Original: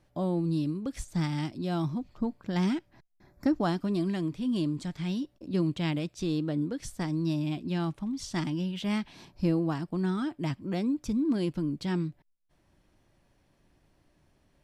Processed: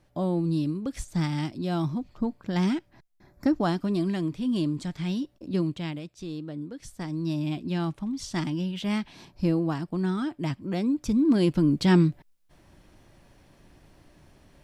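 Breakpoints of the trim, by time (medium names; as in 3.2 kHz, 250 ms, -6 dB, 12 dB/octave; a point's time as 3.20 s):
5.52 s +2.5 dB
6.03 s -6 dB
6.67 s -6 dB
7.47 s +2 dB
10.73 s +2 dB
11.92 s +11 dB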